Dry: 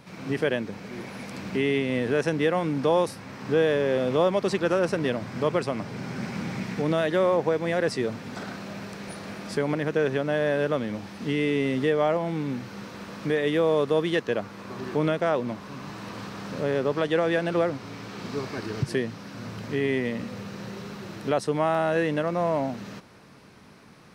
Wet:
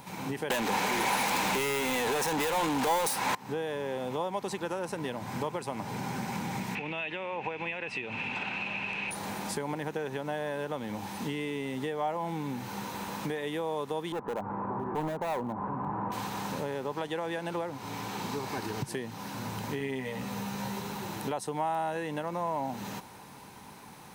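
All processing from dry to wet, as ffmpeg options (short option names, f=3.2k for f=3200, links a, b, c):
-filter_complex "[0:a]asettb=1/sr,asplit=3[a][b][c];[a]atrim=end=0.504[d];[b]atrim=start=0.5:end=3.35,asetpts=PTS-STARTPTS,afade=t=in:d=0.004:c=qsin,afade=t=out:st=2.846:d=0.004:c=qsin,acontrast=83,asplit=2[e][f];[f]highpass=f=720:p=1,volume=32dB,asoftclip=type=tanh:threshold=-5.5dB[g];[e][g]amix=inputs=2:normalize=0,lowpass=f=6.3k:p=1,volume=-6dB[h];[c]atrim=start=3.346[i];[d][h]acrossfade=d=0.004:c1=hsin:c2=qsin[j];[j][i]acrossfade=d=0.004:c1=qsin:c2=hsin,asettb=1/sr,asplit=3[k][l][m];[k]atrim=end=6.754[n];[l]atrim=start=6.75:end=9.11,asetpts=PTS-STARTPTS,afade=t=in:d=0.004:c=qsin,afade=t=out:st=2.356:d=0.004:c=qsin,aemphasis=mode=production:type=cd,acompressor=threshold=-34dB:ratio=4:attack=3.2:release=140:knee=1:detection=peak,lowpass=f=2.6k:t=q:w=13[o];[m]atrim=start=9.106[p];[n][o]acrossfade=d=0.004:c1=hsin:c2=qsin[q];[q][p]acrossfade=d=0.004:c1=qsin:c2=hsin,asettb=1/sr,asplit=3[r][s][t];[r]atrim=end=14.124[u];[s]atrim=start=14.12:end=16.12,asetpts=PTS-STARTPTS,afade=t=in:d=0.004:c=qsin,afade=t=out:st=1.996:d=0.004:c=qsin,lowpass=f=1.3k:w=0.5412,lowpass=f=1.3k:w=1.3066,acompressor=mode=upward:threshold=-27dB:ratio=2.5:attack=3.2:release=140:knee=2.83:detection=peak,volume=25.5dB,asoftclip=hard,volume=-25.5dB[v];[t]atrim=start=16.116[w];[u][v]acrossfade=d=0.004:c1=hsin:c2=qsin[x];[x][w]acrossfade=d=0.004:c1=qsin:c2=hsin,asettb=1/sr,asplit=3[y][z][aa];[y]atrim=end=19.794[ab];[z]atrim=start=19.79:end=20.8,asetpts=PTS-STARTPTS,afade=t=in:d=0.004:c=qsin,afade=t=out:st=1.006:d=0.004:c=qsin,bandreject=f=350:w=5.5,asplit=2[ac][ad];[ad]adelay=15,volume=-3.5dB[ae];[ac][ae]amix=inputs=2:normalize=0,atrim=end_sample=44541[af];[aa]atrim=start=20.796[ag];[ab][af]acrossfade=d=0.004:c1=hsin:c2=qsin[ah];[ah][ag]acrossfade=d=0.004:c1=qsin:c2=hsin,aemphasis=mode=production:type=50fm,acompressor=threshold=-32dB:ratio=5,superequalizer=9b=3.16:14b=0.631"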